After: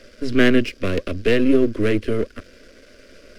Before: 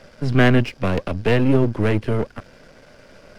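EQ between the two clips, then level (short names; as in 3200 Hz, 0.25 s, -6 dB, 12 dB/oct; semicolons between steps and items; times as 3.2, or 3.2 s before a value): fixed phaser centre 350 Hz, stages 4; +3.0 dB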